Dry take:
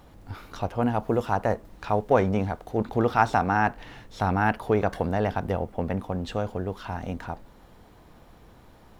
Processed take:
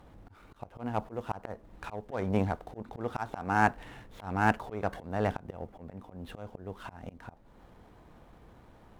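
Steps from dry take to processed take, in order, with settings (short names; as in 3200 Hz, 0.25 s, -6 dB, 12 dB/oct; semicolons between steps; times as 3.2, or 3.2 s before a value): median filter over 9 samples; added harmonics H 7 -28 dB, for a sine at -6.5 dBFS; auto swell 0.298 s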